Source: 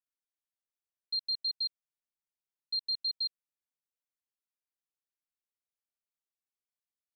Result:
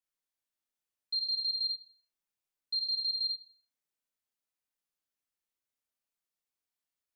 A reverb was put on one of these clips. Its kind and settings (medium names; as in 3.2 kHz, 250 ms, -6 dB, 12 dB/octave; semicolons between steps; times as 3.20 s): Schroeder reverb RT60 0.4 s, combs from 25 ms, DRR 0.5 dB